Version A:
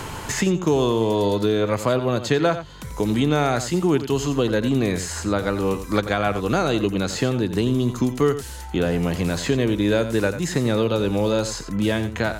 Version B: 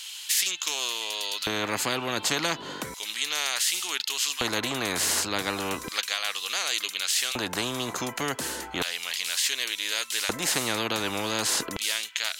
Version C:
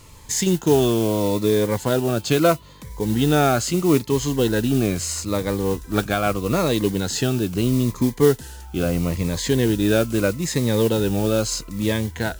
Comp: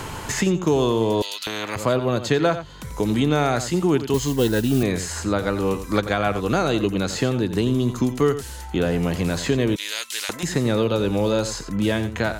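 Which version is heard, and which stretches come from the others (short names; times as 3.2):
A
1.22–1.76 from B
4.14–4.83 from C
9.76–10.43 from B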